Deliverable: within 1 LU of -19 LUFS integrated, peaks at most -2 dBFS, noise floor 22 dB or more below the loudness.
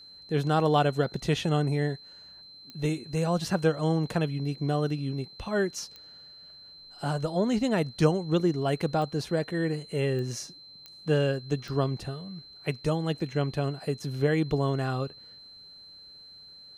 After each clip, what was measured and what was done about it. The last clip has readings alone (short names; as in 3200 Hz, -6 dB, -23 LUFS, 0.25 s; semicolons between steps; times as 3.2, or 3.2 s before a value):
clicks 6; steady tone 4100 Hz; tone level -47 dBFS; loudness -28.5 LUFS; peak -9.5 dBFS; loudness target -19.0 LUFS
-> de-click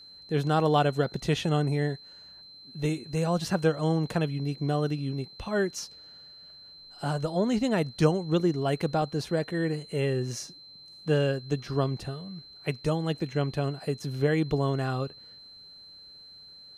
clicks 0; steady tone 4100 Hz; tone level -47 dBFS
-> notch 4100 Hz, Q 30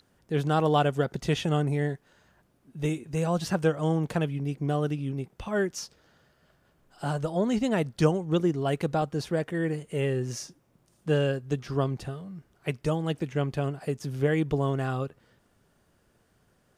steady tone none; loudness -28.5 LUFS; peak -9.5 dBFS; loudness target -19.0 LUFS
-> gain +9.5 dB; limiter -2 dBFS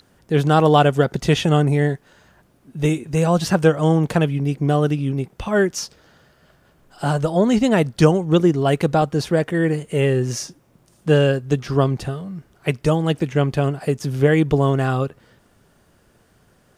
loudness -19.0 LUFS; peak -2.0 dBFS; noise floor -58 dBFS